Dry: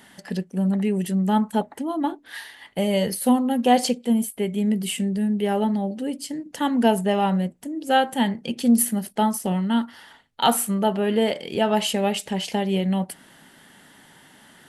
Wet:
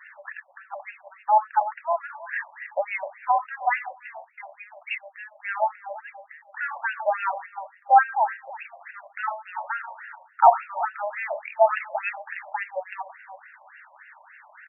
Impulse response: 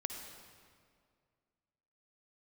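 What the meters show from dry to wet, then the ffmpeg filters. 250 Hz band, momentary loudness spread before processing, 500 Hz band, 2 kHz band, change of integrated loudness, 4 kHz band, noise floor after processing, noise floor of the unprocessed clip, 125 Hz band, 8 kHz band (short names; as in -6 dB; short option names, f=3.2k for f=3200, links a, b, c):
under -40 dB, 9 LU, -4.5 dB, +4.0 dB, -2.5 dB, under -20 dB, -57 dBFS, -53 dBFS, under -40 dB, under -40 dB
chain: -filter_complex "[0:a]asubboost=boost=11.5:cutoff=69,asplit=2[a][b];[b]adelay=336,lowpass=f=910:p=1,volume=-13dB,asplit=2[c][d];[d]adelay=336,lowpass=f=910:p=1,volume=0.27,asplit=2[e][f];[f]adelay=336,lowpass=f=910:p=1,volume=0.27[g];[a][c][e][g]amix=inputs=4:normalize=0,asplit=2[h][i];[1:a]atrim=start_sample=2205,atrim=end_sample=6615,highshelf=f=2.4k:g=11.5[j];[i][j]afir=irnorm=-1:irlink=0,volume=-8.5dB[k];[h][k]amix=inputs=2:normalize=0,afftfilt=real='re*between(b*sr/1024,770*pow(2000/770,0.5+0.5*sin(2*PI*3.5*pts/sr))/1.41,770*pow(2000/770,0.5+0.5*sin(2*PI*3.5*pts/sr))*1.41)':imag='im*between(b*sr/1024,770*pow(2000/770,0.5+0.5*sin(2*PI*3.5*pts/sr))/1.41,770*pow(2000/770,0.5+0.5*sin(2*PI*3.5*pts/sr))*1.41)':win_size=1024:overlap=0.75,volume=5dB"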